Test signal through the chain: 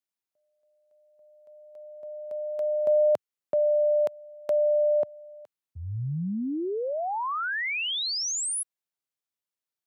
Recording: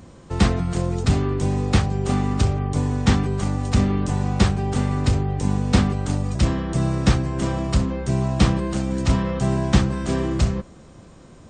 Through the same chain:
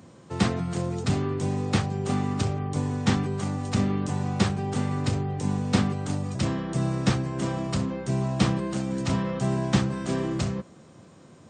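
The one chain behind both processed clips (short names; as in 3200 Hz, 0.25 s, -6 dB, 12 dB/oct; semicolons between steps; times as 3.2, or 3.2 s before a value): HPF 100 Hz 24 dB/oct; gain -4 dB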